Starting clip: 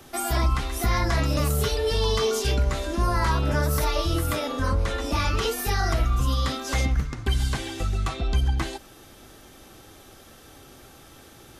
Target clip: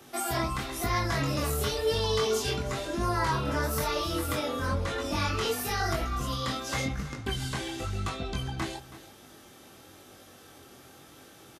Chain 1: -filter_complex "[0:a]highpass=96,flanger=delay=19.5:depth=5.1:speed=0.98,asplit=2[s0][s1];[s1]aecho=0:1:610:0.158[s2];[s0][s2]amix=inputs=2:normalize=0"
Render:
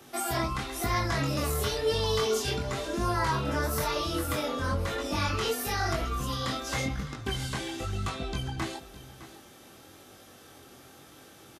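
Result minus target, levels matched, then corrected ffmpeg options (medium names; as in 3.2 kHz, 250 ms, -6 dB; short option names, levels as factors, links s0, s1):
echo 286 ms late
-filter_complex "[0:a]highpass=96,flanger=delay=19.5:depth=5.1:speed=0.98,asplit=2[s0][s1];[s1]aecho=0:1:324:0.158[s2];[s0][s2]amix=inputs=2:normalize=0"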